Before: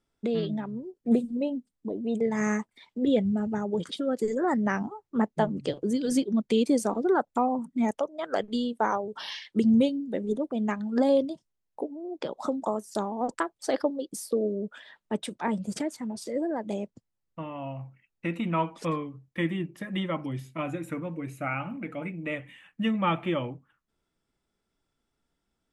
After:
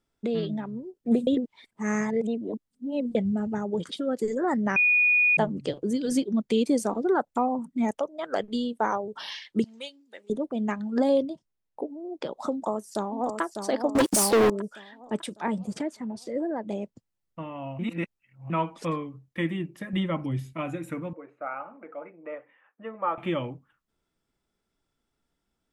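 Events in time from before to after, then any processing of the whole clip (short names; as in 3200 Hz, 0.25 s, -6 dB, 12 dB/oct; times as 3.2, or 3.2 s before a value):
1.27–3.15 reverse
4.76–5.37 bleep 2460 Hz -17.5 dBFS
9.64–10.3 HPF 1300 Hz
11.23–11.88 high shelf 3900 Hz -7.5 dB
12.52–13.41 echo throw 0.6 s, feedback 45%, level -6 dB
13.95–14.5 sample leveller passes 5
15.67–16.82 LPF 3800 Hz 6 dB/oct
17.79–18.5 reverse
19.93–20.53 low shelf 160 Hz +9 dB
21.13–23.18 Chebyshev band-pass 460–1300 Hz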